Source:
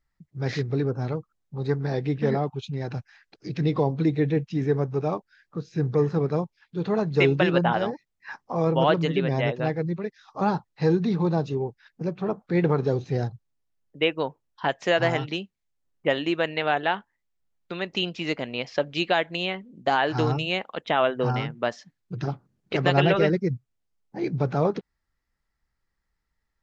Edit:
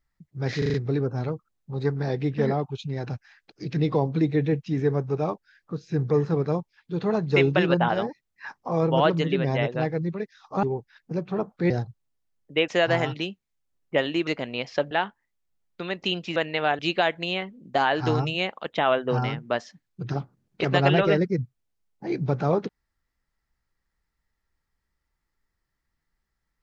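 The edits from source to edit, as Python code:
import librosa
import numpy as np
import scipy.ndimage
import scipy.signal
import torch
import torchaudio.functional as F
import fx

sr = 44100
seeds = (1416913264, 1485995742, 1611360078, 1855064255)

y = fx.edit(x, sr, fx.stutter(start_s=0.58, slice_s=0.04, count=5),
    fx.cut(start_s=10.47, length_s=1.06),
    fx.cut(start_s=12.6, length_s=0.55),
    fx.cut(start_s=14.13, length_s=0.67),
    fx.swap(start_s=16.39, length_s=0.43, other_s=18.27, other_length_s=0.64), tone=tone)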